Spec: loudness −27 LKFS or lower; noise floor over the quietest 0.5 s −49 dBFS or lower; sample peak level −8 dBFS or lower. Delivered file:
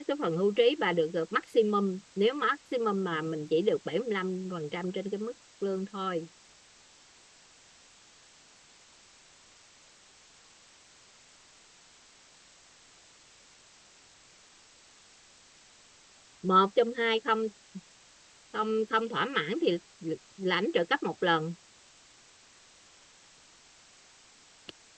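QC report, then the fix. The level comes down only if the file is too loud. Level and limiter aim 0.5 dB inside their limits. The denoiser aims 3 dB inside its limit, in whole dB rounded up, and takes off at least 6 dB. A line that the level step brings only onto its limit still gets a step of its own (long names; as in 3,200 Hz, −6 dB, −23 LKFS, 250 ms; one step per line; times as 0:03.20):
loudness −29.5 LKFS: in spec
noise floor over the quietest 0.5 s −58 dBFS: in spec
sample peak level −11.5 dBFS: in spec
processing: no processing needed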